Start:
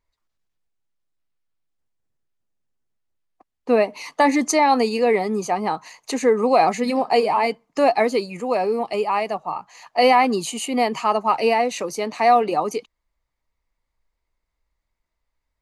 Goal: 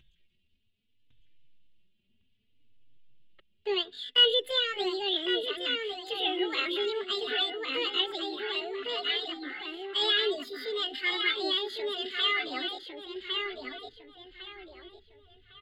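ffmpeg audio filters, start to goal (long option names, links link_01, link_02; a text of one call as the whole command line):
ffmpeg -i in.wav -filter_complex "[0:a]firequalizer=gain_entry='entry(150,0);entry(380,-15);entry(560,-26);entry(1700,8);entry(3600,-21);entry(11000,-29)':delay=0.05:min_phase=1,asetrate=74167,aresample=44100,atempo=0.594604,acompressor=mode=upward:threshold=-47dB:ratio=2.5,asplit=2[link_01][link_02];[link_02]adelay=1105,lowpass=frequency=4200:poles=1,volume=-3dB,asplit=2[link_03][link_04];[link_04]adelay=1105,lowpass=frequency=4200:poles=1,volume=0.36,asplit=2[link_05][link_06];[link_06]adelay=1105,lowpass=frequency=4200:poles=1,volume=0.36,asplit=2[link_07][link_08];[link_08]adelay=1105,lowpass=frequency=4200:poles=1,volume=0.36,asplit=2[link_09][link_10];[link_10]adelay=1105,lowpass=frequency=4200:poles=1,volume=0.36[link_11];[link_01][link_03][link_05][link_07][link_09][link_11]amix=inputs=6:normalize=0,asplit=2[link_12][link_13];[link_13]adelay=3.3,afreqshift=0.62[link_14];[link_12][link_14]amix=inputs=2:normalize=1" out.wav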